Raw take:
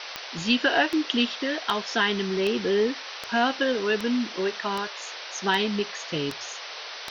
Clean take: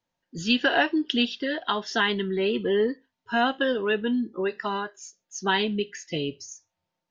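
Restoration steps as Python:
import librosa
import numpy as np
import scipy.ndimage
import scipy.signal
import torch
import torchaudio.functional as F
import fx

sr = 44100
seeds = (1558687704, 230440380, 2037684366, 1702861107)

y = fx.fix_declick_ar(x, sr, threshold=10.0)
y = fx.noise_reduce(y, sr, print_start_s=6.58, print_end_s=7.08, reduce_db=30.0)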